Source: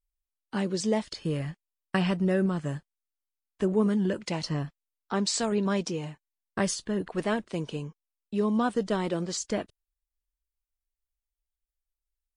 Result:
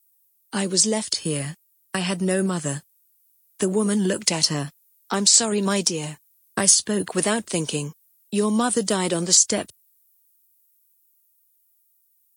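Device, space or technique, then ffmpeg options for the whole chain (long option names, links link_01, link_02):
FM broadcast chain: -filter_complex "[0:a]highpass=frequency=74:width=0.5412,highpass=frequency=74:width=1.3066,dynaudnorm=framelen=350:gausssize=17:maxgain=3.5dB,acrossover=split=190|7000[link_01][link_02][link_03];[link_01]acompressor=threshold=-36dB:ratio=4[link_04];[link_02]acompressor=threshold=-23dB:ratio=4[link_05];[link_03]acompressor=threshold=-41dB:ratio=4[link_06];[link_04][link_05][link_06]amix=inputs=3:normalize=0,aemphasis=mode=production:type=50fm,alimiter=limit=-15dB:level=0:latency=1:release=345,asoftclip=type=hard:threshold=-16.5dB,lowpass=frequency=15000:width=0.5412,lowpass=frequency=15000:width=1.3066,aemphasis=mode=production:type=50fm,volume=5dB"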